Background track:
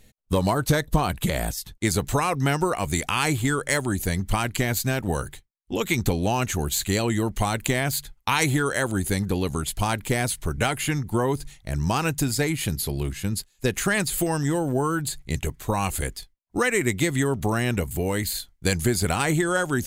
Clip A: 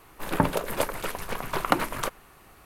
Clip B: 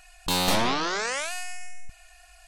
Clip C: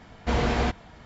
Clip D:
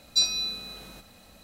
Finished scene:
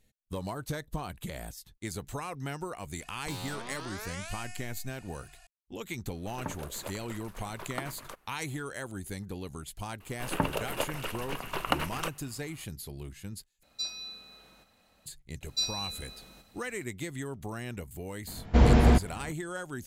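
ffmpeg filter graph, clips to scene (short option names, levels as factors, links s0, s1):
-filter_complex "[1:a]asplit=2[s0][s1];[4:a]asplit=2[s2][s3];[0:a]volume=0.188[s4];[2:a]acompressor=threshold=0.0178:ratio=6:attack=3.2:release=140:knee=1:detection=peak[s5];[s1]equalizer=f=2800:t=o:w=0.24:g=10.5[s6];[s2]equalizer=f=1300:w=0.35:g=6.5[s7];[3:a]lowshelf=f=450:g=11[s8];[s4]asplit=2[s9][s10];[s9]atrim=end=13.634[s11];[s7]atrim=end=1.43,asetpts=PTS-STARTPTS,volume=0.168[s12];[s10]atrim=start=15.056[s13];[s5]atrim=end=2.47,asetpts=PTS-STARTPTS,volume=0.631,afade=t=in:d=0.004:c=hsin,afade=t=out:st=2.466:d=0.004:c=hsin,adelay=3000[s14];[s0]atrim=end=2.65,asetpts=PTS-STARTPTS,volume=0.168,afade=t=in:d=0.004:c=hsin,afade=t=out:st=2.646:d=0.004:c=hsin,adelay=6060[s15];[s6]atrim=end=2.65,asetpts=PTS-STARTPTS,volume=0.501,afade=t=in:d=0.004:c=hsin,afade=t=out:st=2.646:d=0.004:c=hsin,adelay=10000[s16];[s3]atrim=end=1.43,asetpts=PTS-STARTPTS,volume=0.422,afade=t=in:d=0.004:c=hsin,afade=t=out:st=1.426:d=0.004:c=hsin,adelay=15410[s17];[s8]atrim=end=1.05,asetpts=PTS-STARTPTS,volume=0.668,afade=t=in:d=0.004:c=hsin,afade=t=out:st=1.046:d=0.004:c=hsin,adelay=18270[s18];[s11][s12]acrossfade=d=0.004:c1=hsin:c2=hsin[s19];[s19][s13]acrossfade=d=0.004:c1=hsin:c2=hsin[s20];[s20][s14][s15][s16][s17][s18]amix=inputs=6:normalize=0"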